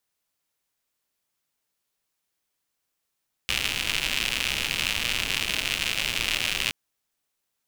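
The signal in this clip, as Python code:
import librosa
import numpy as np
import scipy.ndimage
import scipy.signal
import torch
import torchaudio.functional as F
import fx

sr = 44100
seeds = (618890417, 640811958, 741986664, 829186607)

y = fx.rain(sr, seeds[0], length_s=3.22, drops_per_s=140.0, hz=2700.0, bed_db=-9.0)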